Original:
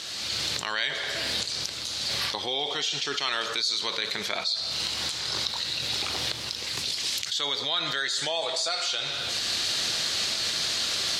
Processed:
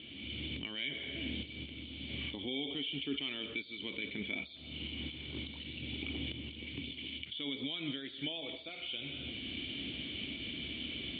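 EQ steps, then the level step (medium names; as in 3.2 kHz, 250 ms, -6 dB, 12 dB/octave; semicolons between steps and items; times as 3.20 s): cascade formant filter i; peaking EQ 68 Hz +12 dB 0.45 oct; +7.0 dB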